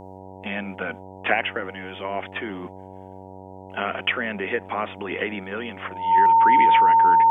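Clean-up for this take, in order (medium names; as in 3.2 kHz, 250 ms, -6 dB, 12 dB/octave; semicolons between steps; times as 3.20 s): de-hum 94.8 Hz, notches 10; band-stop 910 Hz, Q 30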